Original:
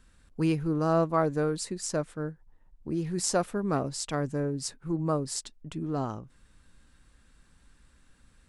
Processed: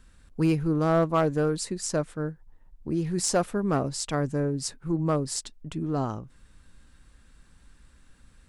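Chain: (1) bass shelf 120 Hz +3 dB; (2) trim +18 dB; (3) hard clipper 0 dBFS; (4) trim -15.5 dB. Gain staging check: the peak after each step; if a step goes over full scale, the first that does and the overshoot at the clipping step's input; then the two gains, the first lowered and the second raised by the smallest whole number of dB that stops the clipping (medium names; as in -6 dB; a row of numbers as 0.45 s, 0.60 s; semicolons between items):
-11.5 dBFS, +6.5 dBFS, 0.0 dBFS, -15.5 dBFS; step 2, 6.5 dB; step 2 +11 dB, step 4 -8.5 dB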